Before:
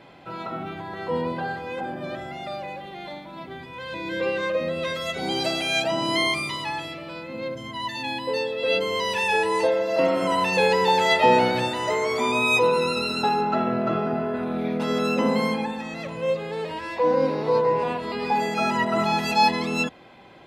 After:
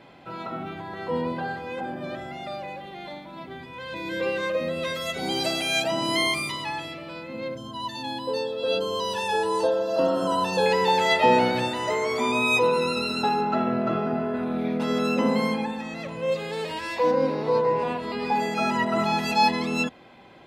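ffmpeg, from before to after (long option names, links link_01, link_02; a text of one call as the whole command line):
ffmpeg -i in.wav -filter_complex "[0:a]asettb=1/sr,asplit=3[link_01][link_02][link_03];[link_01]atrim=end=3.964[link_04];[link_02]atrim=start=3.96:end=6.52,asetpts=PTS-STARTPTS,afade=type=in:duration=0.004:curve=qsin,afade=type=out:start_time=2.556:duration=0.004:curve=qsin,highshelf=frequency=9000:gain=10[link_05];[link_03]atrim=start=6.516[link_06];[link_04][link_05]acrossfade=duration=0.004:curve1=hsin:curve2=qsin[link_07];[link_07][link_06]acrossfade=duration=0.004:curve1=qsin:curve2=hsin,asettb=1/sr,asplit=3[link_08][link_09][link_10];[link_08]atrim=end=7.574[link_11];[link_09]atrim=start=7.57:end=10.66,asetpts=PTS-STARTPTS,afade=type=in:duration=0.004:curve=qsin,afade=type=out:start_time=3.086:duration=0.004:curve=qsin,asuperstop=centerf=2200:order=4:qfactor=1.8[link_12];[link_10]atrim=start=10.656[link_13];[link_11][link_12]acrossfade=duration=0.004:curve1=hsin:curve2=qsin[link_14];[link_14][link_13]acrossfade=duration=0.004:curve1=qsin:curve2=hsin,asplit=3[link_15][link_16][link_17];[link_15]afade=type=out:start_time=16.31:duration=0.02[link_18];[link_16]highshelf=frequency=2800:gain=10.5,afade=type=in:start_time=16.31:duration=0.02,afade=type=out:start_time=17.1:duration=0.02[link_19];[link_17]afade=type=in:start_time=17.1:duration=0.02[link_20];[link_18][link_19][link_20]amix=inputs=3:normalize=0,equalizer=frequency=240:width_type=o:width=0.26:gain=3,volume=-1.5dB" out.wav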